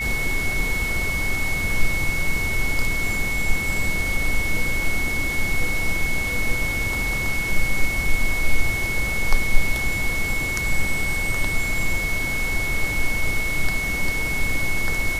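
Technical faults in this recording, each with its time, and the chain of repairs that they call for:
tone 2200 Hz -24 dBFS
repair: notch 2200 Hz, Q 30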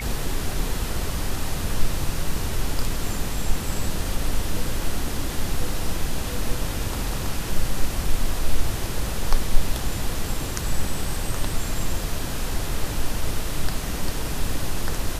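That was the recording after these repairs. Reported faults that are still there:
none

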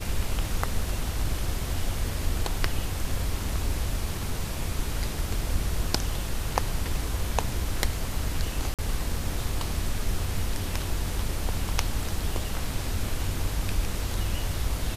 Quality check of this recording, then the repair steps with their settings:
8.74–8.79 gap 47 ms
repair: interpolate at 8.74, 47 ms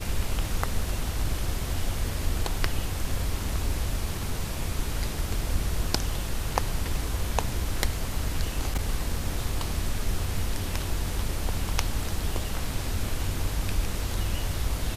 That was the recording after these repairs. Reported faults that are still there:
none

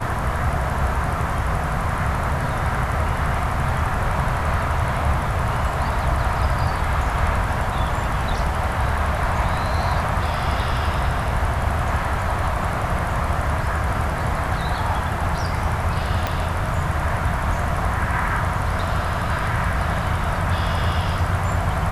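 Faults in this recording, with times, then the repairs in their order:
16.27 pop -8 dBFS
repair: de-click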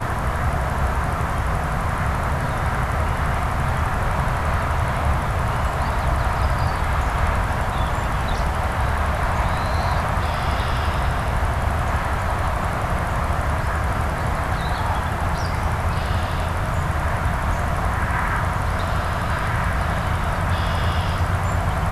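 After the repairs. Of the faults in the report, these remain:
16.27 pop

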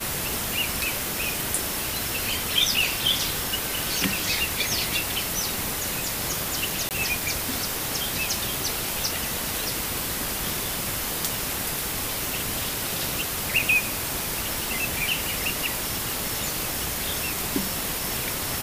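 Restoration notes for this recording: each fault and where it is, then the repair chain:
crackle 20/s -31 dBFS
6.89–6.91 gap 18 ms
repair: de-click; interpolate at 6.89, 18 ms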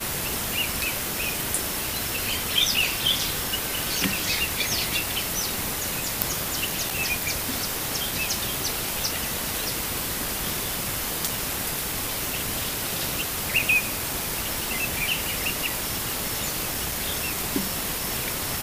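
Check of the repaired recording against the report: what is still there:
none

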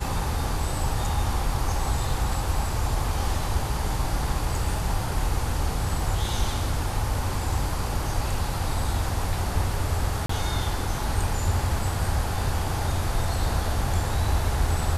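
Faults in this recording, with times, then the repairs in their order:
10.26–10.29 gap 34 ms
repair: interpolate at 10.26, 34 ms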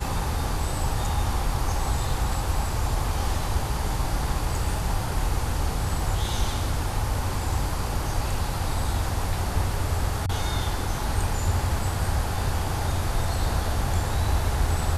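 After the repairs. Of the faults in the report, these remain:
none

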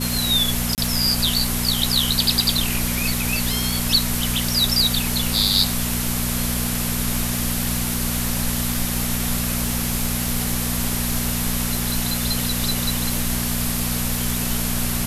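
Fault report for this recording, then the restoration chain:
crackle 51/s -25 dBFS
hum 60 Hz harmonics 4 -26 dBFS
0.75–0.78 gap 28 ms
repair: de-click; de-hum 60 Hz, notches 4; interpolate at 0.75, 28 ms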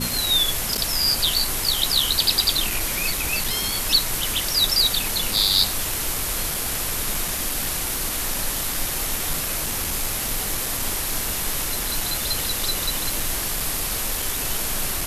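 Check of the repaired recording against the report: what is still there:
none

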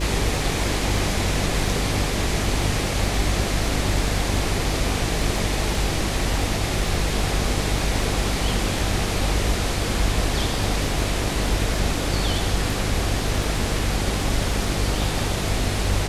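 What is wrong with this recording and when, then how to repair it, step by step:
buzz 50 Hz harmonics 9 -27 dBFS
crackle 30/s -30 dBFS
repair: de-click; de-hum 50 Hz, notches 9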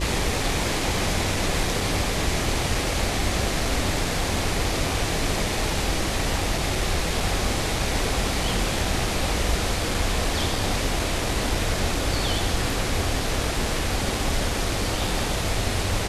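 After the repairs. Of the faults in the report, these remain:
none

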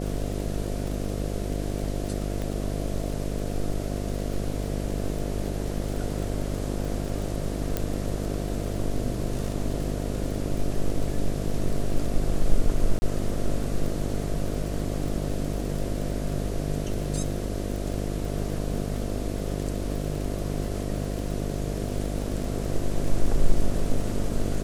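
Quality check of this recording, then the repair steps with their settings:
buzz 50 Hz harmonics 14 -30 dBFS
crackle 38/s -31 dBFS
2.42 pop
7.77 pop -11 dBFS
12.99–13.02 gap 30 ms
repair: de-click; de-hum 50 Hz, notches 14; interpolate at 12.99, 30 ms

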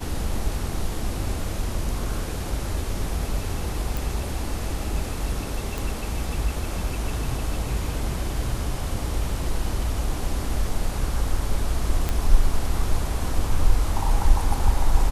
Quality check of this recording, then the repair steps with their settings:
3.97 pop
5.78 pop
12.09 pop -10 dBFS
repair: de-click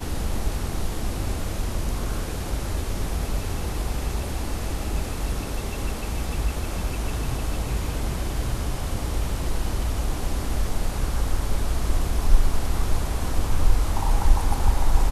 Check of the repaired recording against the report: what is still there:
none

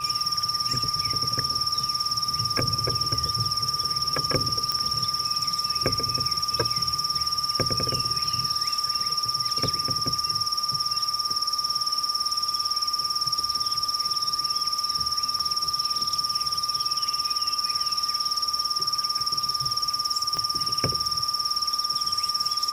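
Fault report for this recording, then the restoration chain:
tone 1200 Hz -30 dBFS
4.72 pop -11 dBFS
15.39–15.4 gap 5.1 ms
20.37 pop -16 dBFS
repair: de-click; notch 1200 Hz, Q 30; interpolate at 15.39, 5.1 ms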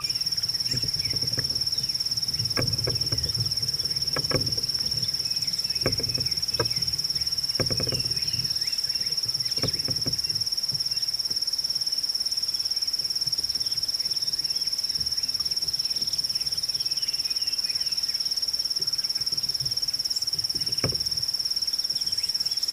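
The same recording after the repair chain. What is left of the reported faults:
20.37 pop

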